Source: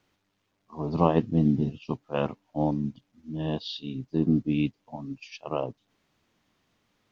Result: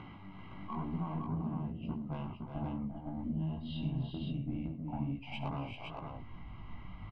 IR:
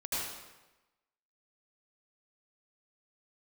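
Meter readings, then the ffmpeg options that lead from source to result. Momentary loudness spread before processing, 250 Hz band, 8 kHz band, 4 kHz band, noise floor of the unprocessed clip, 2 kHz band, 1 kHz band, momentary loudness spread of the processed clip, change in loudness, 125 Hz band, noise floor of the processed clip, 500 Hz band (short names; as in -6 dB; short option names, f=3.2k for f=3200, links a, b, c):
16 LU, -10.5 dB, n/a, -9.5 dB, -75 dBFS, -7.5 dB, -10.0 dB, 13 LU, -11.5 dB, -7.0 dB, -49 dBFS, -18.0 dB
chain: -filter_complex "[0:a]lowpass=f=2.5k:w=0.5412,lowpass=f=2.5k:w=1.3066,equalizer=f=190:w=1.5:g=7,aecho=1:1:1:0.71,asubboost=boost=10.5:cutoff=66,asplit=2[a][b];[b]acompressor=mode=upward:threshold=-21dB:ratio=2.5,volume=0.5dB[c];[a][c]amix=inputs=2:normalize=0,alimiter=limit=-8.5dB:level=0:latency=1:release=166,acompressor=threshold=-28dB:ratio=4,asoftclip=type=tanh:threshold=-21.5dB,flanger=delay=17:depth=5.3:speed=1.1,asuperstop=centerf=1800:order=20:qfactor=6.9,asplit=2[d][e];[e]aecho=0:1:68|107|350|387|513:0.178|0.15|0.282|0.422|0.631[f];[d][f]amix=inputs=2:normalize=0,volume=-5dB"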